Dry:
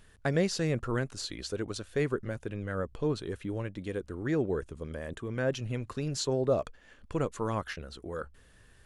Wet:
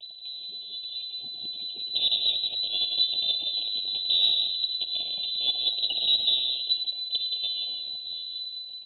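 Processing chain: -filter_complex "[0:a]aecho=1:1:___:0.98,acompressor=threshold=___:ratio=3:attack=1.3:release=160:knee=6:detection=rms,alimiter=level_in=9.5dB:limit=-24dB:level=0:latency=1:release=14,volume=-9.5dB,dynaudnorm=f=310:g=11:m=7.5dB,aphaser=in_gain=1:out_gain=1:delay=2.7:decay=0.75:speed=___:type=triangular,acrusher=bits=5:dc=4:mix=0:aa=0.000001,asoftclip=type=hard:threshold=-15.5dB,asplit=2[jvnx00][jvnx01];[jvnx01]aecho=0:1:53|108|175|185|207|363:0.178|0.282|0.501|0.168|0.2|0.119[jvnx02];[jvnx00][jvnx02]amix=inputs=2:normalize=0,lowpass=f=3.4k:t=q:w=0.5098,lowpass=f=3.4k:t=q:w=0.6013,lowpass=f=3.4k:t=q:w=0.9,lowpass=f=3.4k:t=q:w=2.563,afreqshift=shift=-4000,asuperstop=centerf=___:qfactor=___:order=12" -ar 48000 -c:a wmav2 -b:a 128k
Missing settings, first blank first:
1.9, -35dB, 0.48, 1500, 0.68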